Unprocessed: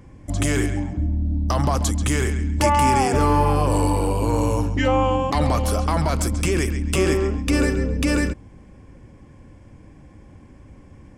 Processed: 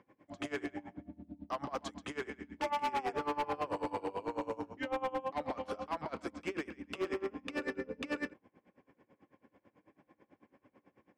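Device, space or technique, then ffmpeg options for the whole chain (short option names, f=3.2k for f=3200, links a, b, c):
helicopter radio: -filter_complex "[0:a]asettb=1/sr,asplit=3[a][b][c];[a]atrim=end=4.464[d];[b]atrim=start=4.46:end=5.49,asetpts=PTS-STARTPTS,afade=t=in:d=0.004:c=qsin,afade=t=out:st=1.026:d=0.004:c=qsin,equalizer=f=2.7k:t=o:w=2:g=-4[e];[c]atrim=start=5.486[f];[d][e]acrossfade=d=0.004:c1=hsin:c2=qsin[g];[g][f]acrossfade=d=0.004:c1=qsin:c2=hsin,highpass=340,lowpass=2.8k,aeval=exprs='val(0)*pow(10,-23*(0.5-0.5*cos(2*PI*9.1*n/s))/20)':c=same,asoftclip=type=hard:threshold=-23dB,volume=-6.5dB"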